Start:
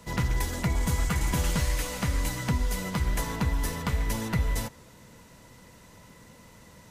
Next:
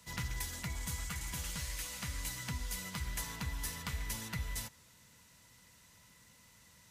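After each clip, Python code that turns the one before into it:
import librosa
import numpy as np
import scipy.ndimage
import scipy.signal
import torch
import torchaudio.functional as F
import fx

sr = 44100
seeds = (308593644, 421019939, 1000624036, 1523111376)

y = scipy.signal.sosfilt(scipy.signal.butter(2, 42.0, 'highpass', fs=sr, output='sos'), x)
y = fx.tone_stack(y, sr, knobs='5-5-5')
y = fx.rider(y, sr, range_db=10, speed_s=0.5)
y = y * 10.0 ** (1.5 / 20.0)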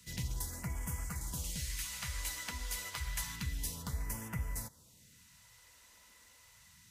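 y = fx.phaser_stages(x, sr, stages=2, low_hz=130.0, high_hz=4000.0, hz=0.29, feedback_pct=5)
y = y * 10.0 ** (1.5 / 20.0)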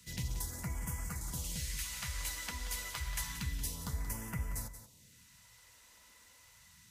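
y = x + 10.0 ** (-11.5 / 20.0) * np.pad(x, (int(180 * sr / 1000.0), 0))[:len(x)]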